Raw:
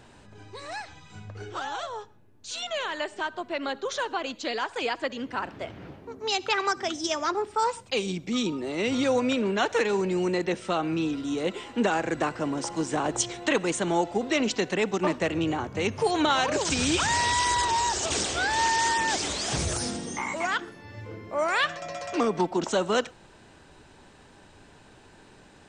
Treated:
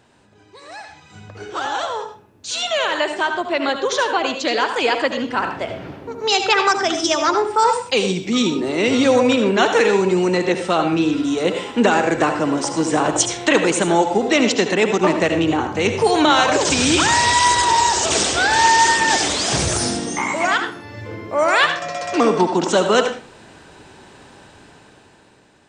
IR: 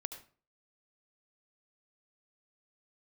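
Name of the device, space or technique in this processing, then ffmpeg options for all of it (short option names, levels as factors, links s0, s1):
far laptop microphone: -filter_complex "[1:a]atrim=start_sample=2205[s0];[0:a][s0]afir=irnorm=-1:irlink=0,highpass=f=100:p=1,dynaudnorm=f=240:g=11:m=4.47"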